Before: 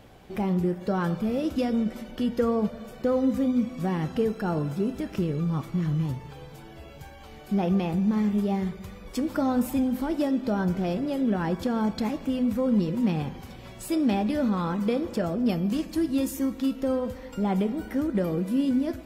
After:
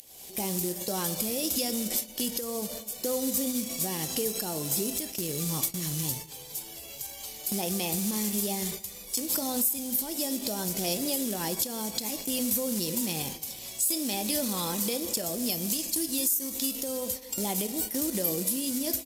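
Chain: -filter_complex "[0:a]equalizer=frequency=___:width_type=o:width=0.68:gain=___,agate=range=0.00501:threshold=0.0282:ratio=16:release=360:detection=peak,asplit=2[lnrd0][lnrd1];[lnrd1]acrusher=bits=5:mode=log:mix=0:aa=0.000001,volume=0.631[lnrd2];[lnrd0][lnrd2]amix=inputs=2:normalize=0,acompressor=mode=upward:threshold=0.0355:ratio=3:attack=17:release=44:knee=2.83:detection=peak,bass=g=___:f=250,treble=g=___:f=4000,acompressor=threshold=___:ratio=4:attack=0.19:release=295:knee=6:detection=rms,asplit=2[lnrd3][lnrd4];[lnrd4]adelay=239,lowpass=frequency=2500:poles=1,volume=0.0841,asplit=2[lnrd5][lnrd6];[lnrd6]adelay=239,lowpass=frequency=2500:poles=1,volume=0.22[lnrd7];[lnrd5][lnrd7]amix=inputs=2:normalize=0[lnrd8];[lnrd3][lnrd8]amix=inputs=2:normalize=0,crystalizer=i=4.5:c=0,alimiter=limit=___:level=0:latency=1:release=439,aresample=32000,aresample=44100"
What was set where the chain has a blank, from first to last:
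1400, -10, -8, 12, 0.0501, 0.2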